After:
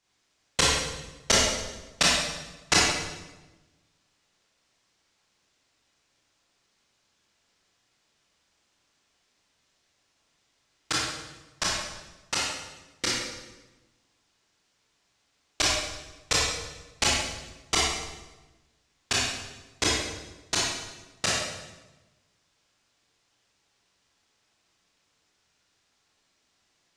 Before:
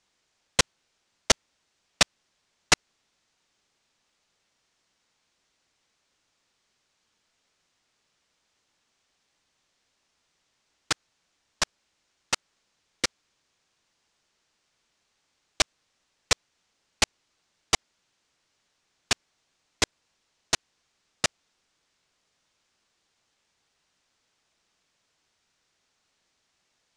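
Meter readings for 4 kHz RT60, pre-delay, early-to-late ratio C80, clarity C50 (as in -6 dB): 0.95 s, 22 ms, 1.5 dB, -2.0 dB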